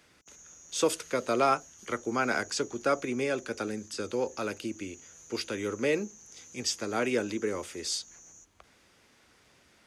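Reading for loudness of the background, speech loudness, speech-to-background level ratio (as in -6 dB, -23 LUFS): -50.0 LUFS, -31.5 LUFS, 18.5 dB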